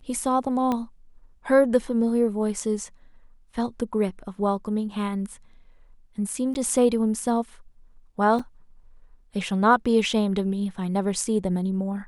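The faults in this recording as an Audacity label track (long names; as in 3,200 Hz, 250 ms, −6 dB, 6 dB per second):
0.720000	0.720000	click −14 dBFS
6.540000	6.550000	drop-out
8.390000	8.390000	drop-out 4.4 ms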